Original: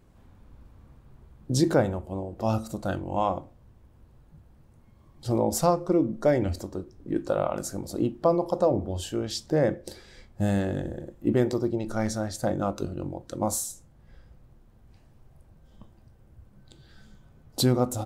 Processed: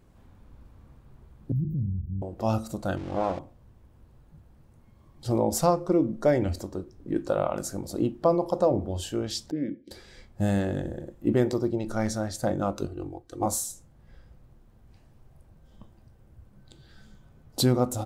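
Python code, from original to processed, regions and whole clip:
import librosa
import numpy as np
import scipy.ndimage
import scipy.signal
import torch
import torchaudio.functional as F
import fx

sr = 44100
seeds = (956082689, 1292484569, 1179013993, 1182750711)

y = fx.chain(x, sr, fx.cheby2_bandstop(low_hz=890.0, high_hz=6700.0, order=4, stop_db=80),
    fx.env_flatten(amount_pct=50), at=(1.52, 2.22))
y = fx.chain(y, sr, fx.crossing_spikes(level_db=-20.0),
    fx.spacing_loss(db_at_10k=32),
    fx.doppler_dist(depth_ms=0.35), at=(2.97, 3.39))
y = fx.chain(y, sr, fx.vowel_filter(vowel='i'),
    fx.low_shelf(hz=420.0, db=9.0), at=(9.51, 9.91))
y = fx.chain(y, sr, fx.comb(ms=2.6, depth=0.8),
    fx.upward_expand(threshold_db=-43.0, expansion=1.5), at=(12.87, 13.46))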